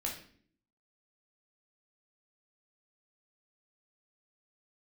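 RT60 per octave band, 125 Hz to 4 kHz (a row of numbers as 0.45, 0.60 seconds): 0.75, 0.85, 0.60, 0.45, 0.50, 0.45 seconds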